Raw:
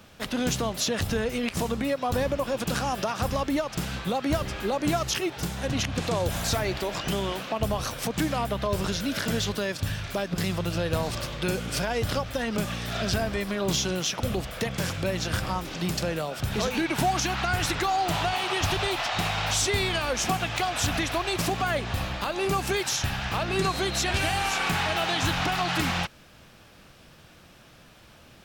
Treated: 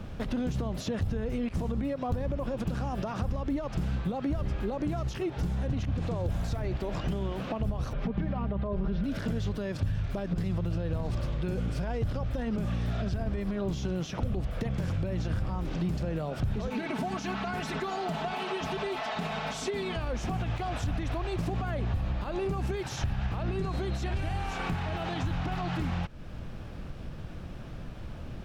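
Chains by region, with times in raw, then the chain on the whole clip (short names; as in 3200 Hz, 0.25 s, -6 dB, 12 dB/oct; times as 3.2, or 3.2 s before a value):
7.93–9.04 air absorption 300 m + comb 5 ms, depth 67%
16.7–19.96 HPF 200 Hz + comb 4.6 ms, depth 81% + Doppler distortion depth 0.11 ms
whole clip: limiter -22.5 dBFS; tilt -3.5 dB/oct; compressor 2.5:1, threshold -37 dBFS; gain +4 dB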